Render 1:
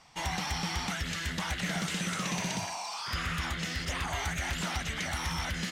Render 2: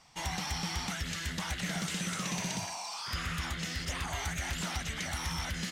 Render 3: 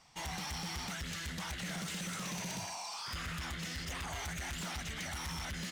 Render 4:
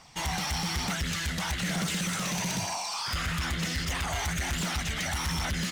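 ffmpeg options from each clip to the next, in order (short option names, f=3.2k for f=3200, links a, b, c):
-af "bass=f=250:g=2,treble=f=4k:g=4,volume=-3.5dB"
-af "volume=34.5dB,asoftclip=hard,volume=-34.5dB,volume=-2.5dB"
-af "aphaser=in_gain=1:out_gain=1:delay=1.6:decay=0.22:speed=1.1:type=triangular,volume=9dB"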